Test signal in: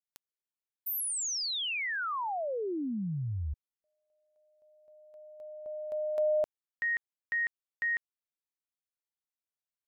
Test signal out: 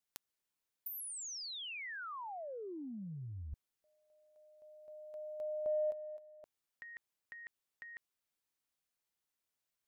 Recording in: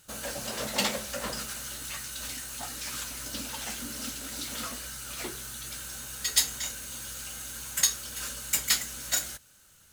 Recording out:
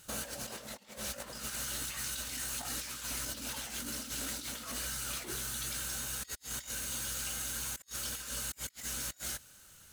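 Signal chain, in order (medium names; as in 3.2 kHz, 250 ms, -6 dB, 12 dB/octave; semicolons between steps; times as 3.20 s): compressor with a negative ratio -39 dBFS, ratio -0.5; trim -2 dB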